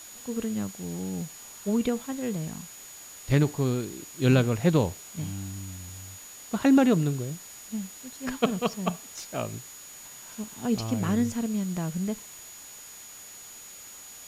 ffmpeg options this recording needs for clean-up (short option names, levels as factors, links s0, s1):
-af "bandreject=f=6800:w=30,afwtdn=0.0045"